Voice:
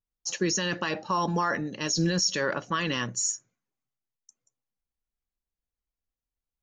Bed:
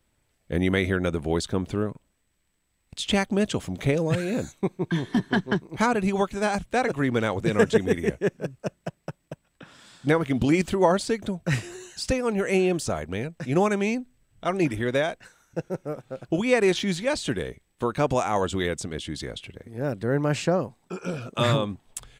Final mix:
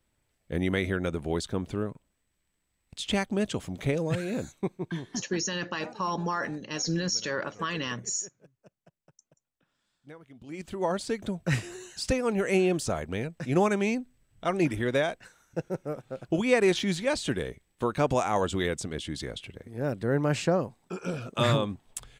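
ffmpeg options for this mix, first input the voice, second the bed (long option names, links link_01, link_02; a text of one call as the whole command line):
ffmpeg -i stem1.wav -i stem2.wav -filter_complex "[0:a]adelay=4900,volume=-3.5dB[link_01];[1:a]volume=20dB,afade=type=out:start_time=4.64:duration=0.79:silence=0.0794328,afade=type=in:start_time=10.45:duration=0.96:silence=0.0595662[link_02];[link_01][link_02]amix=inputs=2:normalize=0" out.wav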